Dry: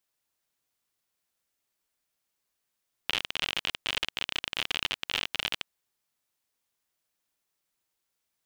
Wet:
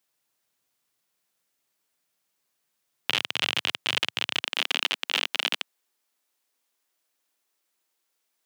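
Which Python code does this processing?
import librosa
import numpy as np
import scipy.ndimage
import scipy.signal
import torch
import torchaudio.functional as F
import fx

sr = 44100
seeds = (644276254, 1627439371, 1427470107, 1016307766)

y = fx.highpass(x, sr, hz=fx.steps((0.0, 110.0), (4.41, 240.0)), slope=24)
y = y * 10.0 ** (4.5 / 20.0)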